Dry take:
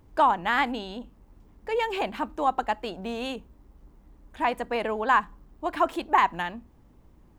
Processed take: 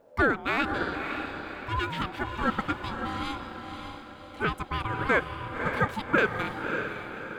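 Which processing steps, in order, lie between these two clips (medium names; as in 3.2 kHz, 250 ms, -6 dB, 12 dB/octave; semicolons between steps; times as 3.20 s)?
echo that smears into a reverb 568 ms, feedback 45%, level -6 dB; ring modulator 550 Hz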